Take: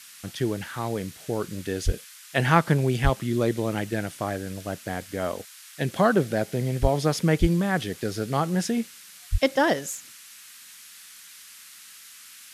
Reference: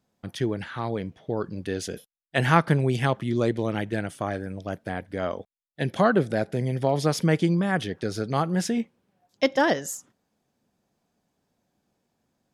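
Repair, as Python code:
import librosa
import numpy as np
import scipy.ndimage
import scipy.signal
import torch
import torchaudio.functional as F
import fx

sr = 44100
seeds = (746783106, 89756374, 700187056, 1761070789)

y = fx.fix_deplosive(x, sr, at_s=(1.85, 3.03, 6.81, 7.4, 9.31))
y = fx.noise_reduce(y, sr, print_start_s=10.18, print_end_s=10.68, reduce_db=28.0)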